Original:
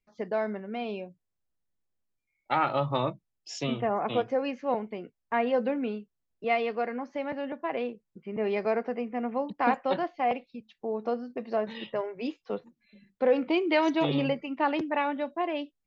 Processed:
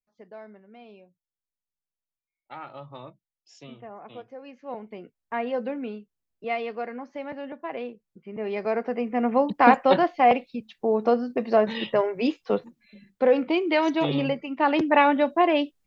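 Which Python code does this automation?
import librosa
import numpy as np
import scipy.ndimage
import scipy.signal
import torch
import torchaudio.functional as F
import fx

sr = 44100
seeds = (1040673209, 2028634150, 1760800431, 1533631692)

y = fx.gain(x, sr, db=fx.line((4.39, -14.0), (4.98, -2.0), (8.44, -2.0), (9.34, 9.0), (12.56, 9.0), (13.59, 2.0), (14.5, 2.0), (14.96, 10.0)))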